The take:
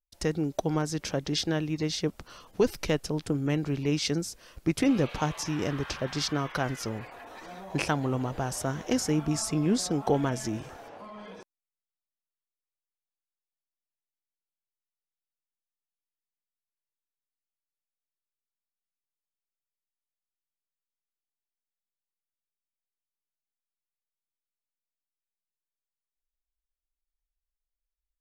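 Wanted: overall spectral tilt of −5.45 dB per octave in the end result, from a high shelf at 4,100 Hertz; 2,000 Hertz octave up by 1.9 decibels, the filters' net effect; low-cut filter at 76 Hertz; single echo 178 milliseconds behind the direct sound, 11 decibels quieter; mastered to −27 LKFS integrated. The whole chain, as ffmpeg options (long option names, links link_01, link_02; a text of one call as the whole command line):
ffmpeg -i in.wav -af "highpass=76,equalizer=frequency=2000:width_type=o:gain=4.5,highshelf=frequency=4100:gain=-8.5,aecho=1:1:178:0.282,volume=2.5dB" out.wav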